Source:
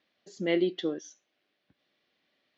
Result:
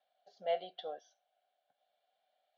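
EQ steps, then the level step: vowel filter a; HPF 360 Hz 6 dB/oct; fixed phaser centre 1700 Hz, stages 8; +11.5 dB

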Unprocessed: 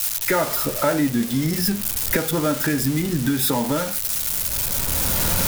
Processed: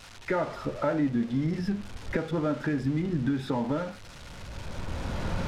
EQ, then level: tape spacing loss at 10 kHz 31 dB; -5.0 dB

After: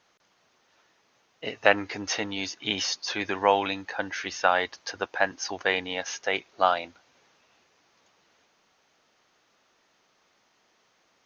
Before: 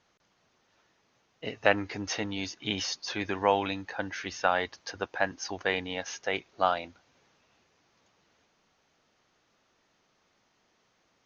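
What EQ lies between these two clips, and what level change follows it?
low shelf 230 Hz -10 dB; +4.5 dB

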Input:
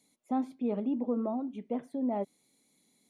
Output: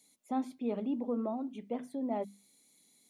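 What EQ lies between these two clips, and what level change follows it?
high shelf 2600 Hz +9 dB; notches 50/100/150/200/250 Hz; -2.5 dB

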